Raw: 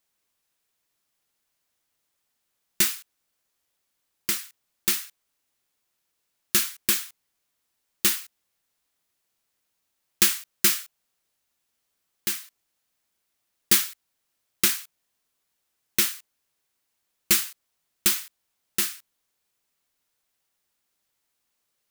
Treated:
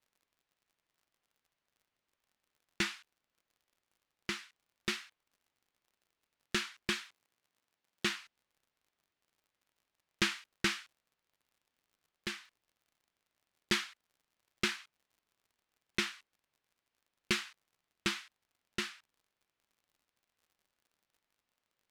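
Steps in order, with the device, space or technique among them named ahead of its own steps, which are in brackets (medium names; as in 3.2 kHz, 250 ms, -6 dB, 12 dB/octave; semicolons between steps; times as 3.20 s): lo-fi chain (low-pass 3.2 kHz 12 dB/octave; wow and flutter; crackle 63 per s -56 dBFS); 7.06–8.10 s: high-pass 92 Hz; trim -3.5 dB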